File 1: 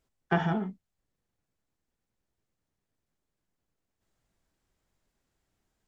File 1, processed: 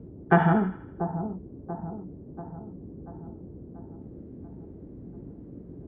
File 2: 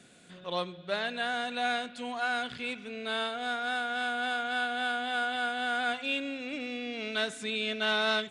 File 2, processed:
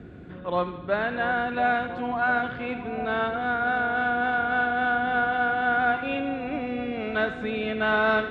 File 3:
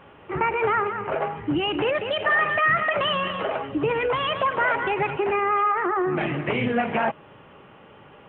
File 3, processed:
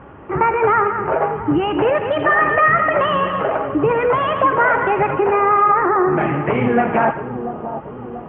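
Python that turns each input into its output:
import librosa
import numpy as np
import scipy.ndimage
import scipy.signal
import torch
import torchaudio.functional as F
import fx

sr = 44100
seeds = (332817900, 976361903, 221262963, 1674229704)

y = fx.dmg_noise_band(x, sr, seeds[0], low_hz=42.0, high_hz=360.0, level_db=-51.0)
y = scipy.signal.sosfilt(scipy.signal.cheby1(2, 1.0, 1400.0, 'lowpass', fs=sr, output='sos'), y)
y = fx.echo_split(y, sr, split_hz=1000.0, low_ms=687, high_ms=80, feedback_pct=52, wet_db=-10.0)
y = F.gain(torch.from_numpy(y), 8.0).numpy()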